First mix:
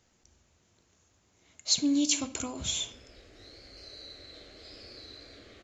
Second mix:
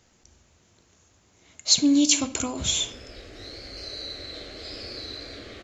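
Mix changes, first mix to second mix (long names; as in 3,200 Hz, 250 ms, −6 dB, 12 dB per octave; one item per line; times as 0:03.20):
speech +7.0 dB
background +11.0 dB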